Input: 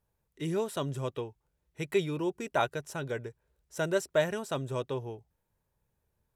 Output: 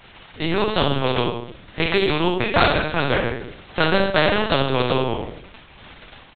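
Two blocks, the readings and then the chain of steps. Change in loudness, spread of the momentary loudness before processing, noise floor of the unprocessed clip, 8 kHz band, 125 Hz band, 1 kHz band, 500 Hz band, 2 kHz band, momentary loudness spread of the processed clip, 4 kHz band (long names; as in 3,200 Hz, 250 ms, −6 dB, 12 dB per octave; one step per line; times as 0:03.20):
+12.5 dB, 12 LU, −80 dBFS, below −15 dB, +11.5 dB, +15.0 dB, +10.5 dB, +16.5 dB, 12 LU, +19.5 dB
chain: spectral magnitudes quantised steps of 15 dB
parametric band 2,400 Hz −3.5 dB 2 octaves
comb filter 5.6 ms, depth 38%
hum removal 368.5 Hz, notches 2
automatic gain control gain up to 9 dB
surface crackle 140 per second −41 dBFS
four-comb reverb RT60 0.49 s, combs from 29 ms, DRR 2 dB
linear-prediction vocoder at 8 kHz pitch kept
every bin compressed towards the loudest bin 2 to 1
level +3 dB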